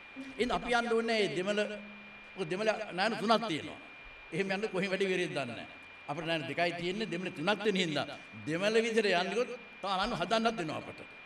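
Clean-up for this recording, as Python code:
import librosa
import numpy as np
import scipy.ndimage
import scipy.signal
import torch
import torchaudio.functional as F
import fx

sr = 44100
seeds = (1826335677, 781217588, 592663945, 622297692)

y = fx.notch(x, sr, hz=2400.0, q=30.0)
y = fx.noise_reduce(y, sr, print_start_s=3.82, print_end_s=4.32, reduce_db=27.0)
y = fx.fix_echo_inverse(y, sr, delay_ms=125, level_db=-11.5)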